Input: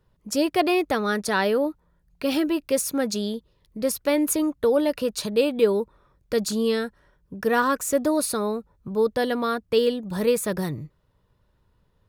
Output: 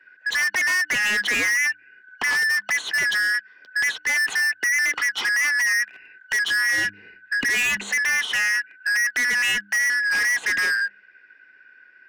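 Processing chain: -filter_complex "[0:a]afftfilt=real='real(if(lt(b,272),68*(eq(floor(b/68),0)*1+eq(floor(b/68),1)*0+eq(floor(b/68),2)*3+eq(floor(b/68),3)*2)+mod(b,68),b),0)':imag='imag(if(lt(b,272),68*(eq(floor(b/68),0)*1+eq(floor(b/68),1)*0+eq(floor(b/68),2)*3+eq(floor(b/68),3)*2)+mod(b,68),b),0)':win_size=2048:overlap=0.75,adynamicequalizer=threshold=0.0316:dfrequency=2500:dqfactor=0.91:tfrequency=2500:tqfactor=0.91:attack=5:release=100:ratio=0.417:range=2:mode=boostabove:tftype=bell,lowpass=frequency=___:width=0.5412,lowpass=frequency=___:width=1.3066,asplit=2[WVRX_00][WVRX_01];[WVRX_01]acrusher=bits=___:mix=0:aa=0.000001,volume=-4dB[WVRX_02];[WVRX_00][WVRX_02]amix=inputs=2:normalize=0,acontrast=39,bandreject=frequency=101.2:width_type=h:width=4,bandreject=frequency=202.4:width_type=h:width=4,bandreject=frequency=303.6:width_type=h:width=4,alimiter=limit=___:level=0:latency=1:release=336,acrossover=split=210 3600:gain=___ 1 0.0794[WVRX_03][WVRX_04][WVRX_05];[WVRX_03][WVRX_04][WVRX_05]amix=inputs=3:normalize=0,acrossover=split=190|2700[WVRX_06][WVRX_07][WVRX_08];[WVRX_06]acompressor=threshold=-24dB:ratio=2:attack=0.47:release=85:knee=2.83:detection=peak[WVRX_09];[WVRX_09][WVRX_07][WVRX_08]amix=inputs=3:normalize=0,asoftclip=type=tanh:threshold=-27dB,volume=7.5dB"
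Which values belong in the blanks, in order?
7600, 7600, 7, -12dB, 0.178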